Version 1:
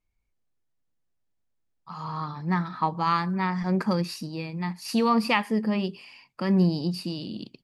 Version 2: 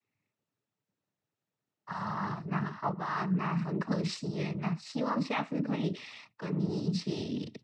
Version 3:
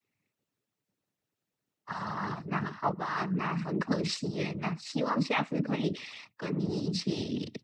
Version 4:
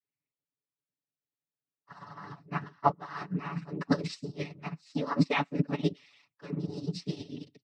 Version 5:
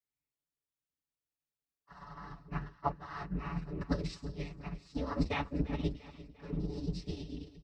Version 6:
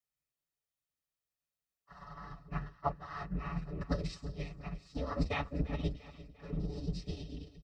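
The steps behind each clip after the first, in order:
treble shelf 3.8 kHz -8 dB; reverse; compression 5:1, threshold -34 dBFS, peak gain reduction 15 dB; reverse; noise-vocoded speech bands 12; trim +4 dB
peaking EQ 940 Hz -3.5 dB 1.6 oct; harmonic-percussive split percussive +9 dB; trim -2.5 dB
comb 7 ms, depth 76%; upward expansion 2.5:1, over -36 dBFS; trim +3.5 dB
octave divider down 2 oct, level -2 dB; harmonic-percussive split percussive -9 dB; feedback delay 346 ms, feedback 52%, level -17.5 dB
comb 1.6 ms, depth 36%; trim -1 dB

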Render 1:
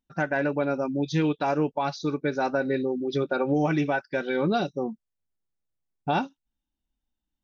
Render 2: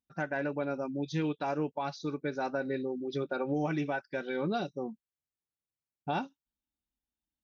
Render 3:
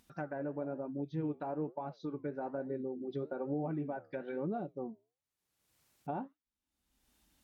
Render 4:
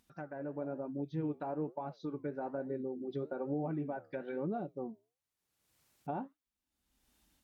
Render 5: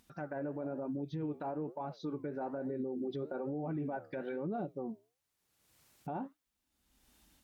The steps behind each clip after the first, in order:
high-pass 49 Hz; trim -7.5 dB
low-pass that closes with the level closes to 840 Hz, closed at -30 dBFS; upward compressor, threshold -46 dBFS; flange 1.1 Hz, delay 4.8 ms, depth 9.3 ms, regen -80%
level rider gain up to 5 dB; trim -5 dB
peak limiter -36 dBFS, peak gain reduction 10.5 dB; trim +5.5 dB

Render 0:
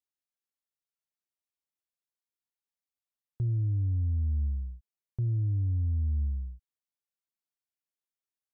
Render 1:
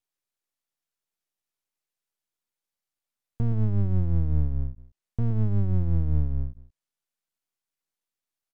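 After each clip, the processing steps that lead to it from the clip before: low-pass that closes with the level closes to 360 Hz, closed at -29 dBFS; delay 118 ms -11.5 dB; half-wave rectifier; trim +8.5 dB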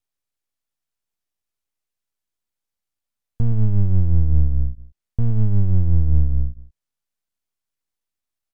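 bass shelf 120 Hz +10.5 dB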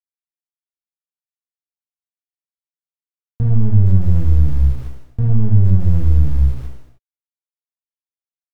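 in parallel at -1.5 dB: peak limiter -13 dBFS, peak gain reduction 7 dB; on the sum: small samples zeroed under -31 dBFS; gated-style reverb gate 340 ms falling, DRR -3 dB; trim -4 dB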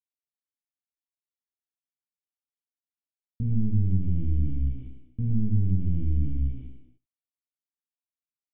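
cascade formant filter i; delay 77 ms -22 dB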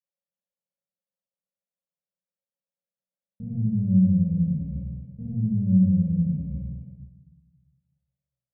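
two resonant band-passes 310 Hz, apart 1.6 oct; simulated room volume 440 m³, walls mixed, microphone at 2.3 m; trim +7 dB

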